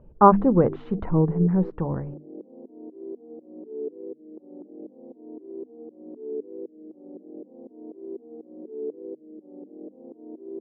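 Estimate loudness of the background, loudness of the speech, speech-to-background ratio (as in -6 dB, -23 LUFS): -40.0 LUFS, -21.0 LUFS, 19.0 dB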